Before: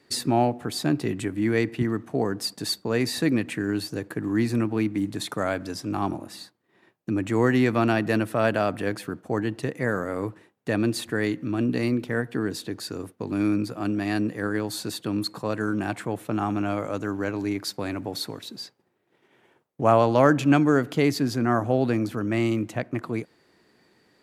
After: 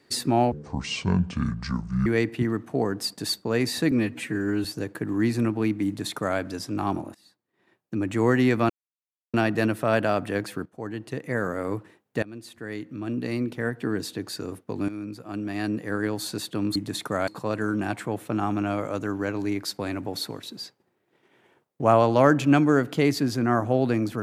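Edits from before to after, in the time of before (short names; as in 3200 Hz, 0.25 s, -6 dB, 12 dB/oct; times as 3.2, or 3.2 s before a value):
0.52–1.46 speed 61%
3.31–3.8 stretch 1.5×
5.02–5.54 copy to 15.27
6.3–7.32 fade in, from -23.5 dB
7.85 insert silence 0.64 s
9.17–10.06 fade in, from -13 dB
10.74–12.49 fade in, from -21.5 dB
13.4–14.53 fade in, from -14.5 dB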